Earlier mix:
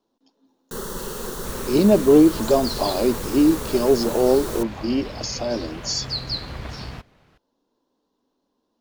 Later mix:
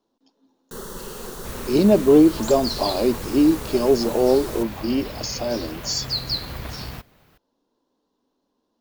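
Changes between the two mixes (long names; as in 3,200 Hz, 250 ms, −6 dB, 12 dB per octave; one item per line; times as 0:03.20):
first sound −4.0 dB
second sound: remove high-frequency loss of the air 65 metres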